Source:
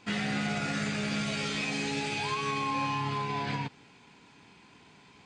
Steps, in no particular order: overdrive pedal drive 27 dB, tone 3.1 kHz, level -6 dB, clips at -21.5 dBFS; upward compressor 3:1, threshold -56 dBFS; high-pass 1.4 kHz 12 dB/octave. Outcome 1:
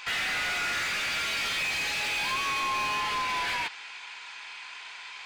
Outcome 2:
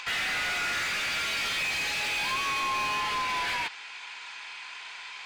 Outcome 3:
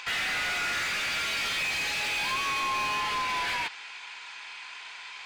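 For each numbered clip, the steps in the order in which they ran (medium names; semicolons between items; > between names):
high-pass > overdrive pedal > upward compressor; high-pass > upward compressor > overdrive pedal; upward compressor > high-pass > overdrive pedal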